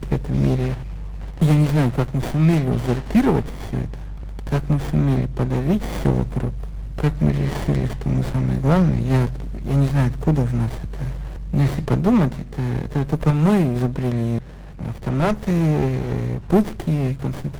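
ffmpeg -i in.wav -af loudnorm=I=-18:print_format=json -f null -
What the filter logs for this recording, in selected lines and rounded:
"input_i" : "-21.0",
"input_tp" : "-4.3",
"input_lra" : "1.7",
"input_thresh" : "-31.3",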